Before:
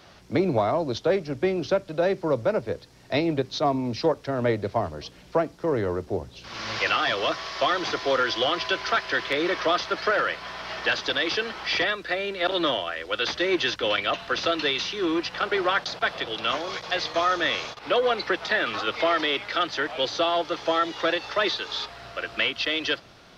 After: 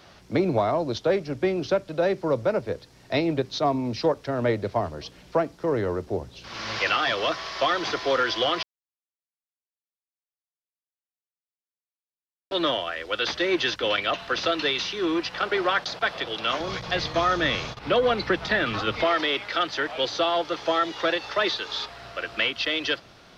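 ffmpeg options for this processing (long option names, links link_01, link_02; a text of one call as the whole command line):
ffmpeg -i in.wav -filter_complex "[0:a]asettb=1/sr,asplit=3[link_01][link_02][link_03];[link_01]atrim=end=16.604[link_04];[link_02]atrim=start=16.6:end=19.04,asetpts=PTS-STARTPTS,afade=type=in:duration=0.004:curve=qsin,afade=type=out:start_time=2.436:duration=0.004:curve=qsin,bass=frequency=250:gain=14,treble=frequency=4000:gain=-1[link_05];[link_03]atrim=start=19.036[link_06];[link_04][link_05]acrossfade=duration=0.004:curve1=hsin:curve2=qsin[link_07];[link_07][link_06]acrossfade=duration=0.004:curve1=qsin:curve2=hsin,asplit=3[link_08][link_09][link_10];[link_08]atrim=end=8.63,asetpts=PTS-STARTPTS,afade=type=out:start_time=8.626:duration=0.004:curve=hsin[link_11];[link_09]atrim=start=8.63:end=12.51,asetpts=PTS-STARTPTS,volume=0[link_12];[link_10]atrim=start=12.51,asetpts=PTS-STARTPTS,afade=type=in:duration=0.004:curve=hsin[link_13];[link_11][link_12][link_13]concat=n=3:v=0:a=1" out.wav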